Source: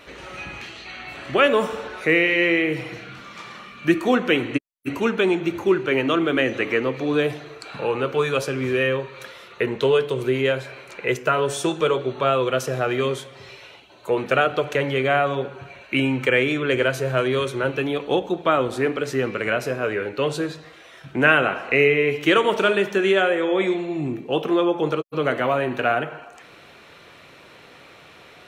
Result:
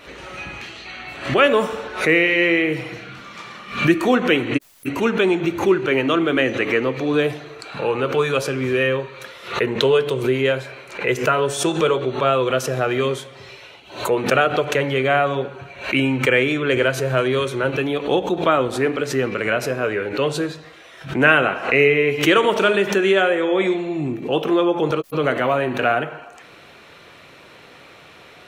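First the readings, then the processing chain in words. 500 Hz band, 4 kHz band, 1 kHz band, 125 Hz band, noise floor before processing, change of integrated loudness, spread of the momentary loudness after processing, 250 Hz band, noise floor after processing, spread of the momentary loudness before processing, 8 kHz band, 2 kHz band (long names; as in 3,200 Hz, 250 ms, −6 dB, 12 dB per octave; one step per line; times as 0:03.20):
+2.0 dB, +3.0 dB, +2.5 dB, +3.0 dB, −47 dBFS, +2.5 dB, 16 LU, +2.5 dB, −45 dBFS, 17 LU, +5.0 dB, +2.5 dB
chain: background raised ahead of every attack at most 120 dB per second
level +2 dB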